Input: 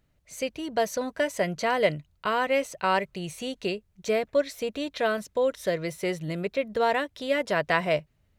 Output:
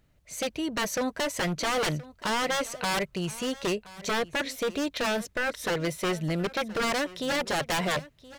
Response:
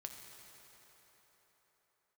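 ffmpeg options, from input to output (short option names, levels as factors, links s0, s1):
-af "aeval=exprs='0.0531*(abs(mod(val(0)/0.0531+3,4)-2)-1)':c=same,aecho=1:1:1023:0.112,volume=1.5"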